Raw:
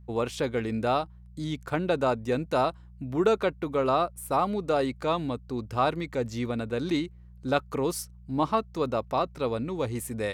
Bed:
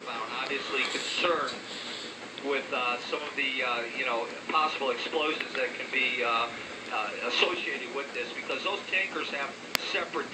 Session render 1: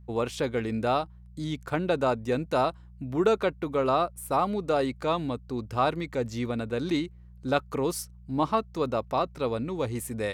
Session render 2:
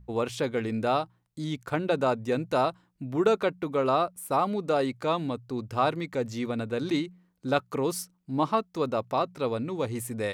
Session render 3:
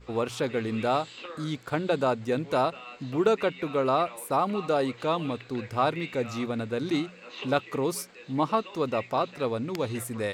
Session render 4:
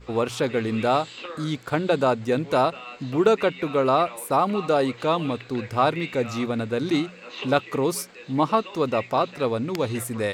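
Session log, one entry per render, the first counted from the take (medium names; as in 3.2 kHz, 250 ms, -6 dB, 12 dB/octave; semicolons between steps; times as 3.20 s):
no audible change
de-hum 60 Hz, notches 3
add bed -14.5 dB
trim +4.5 dB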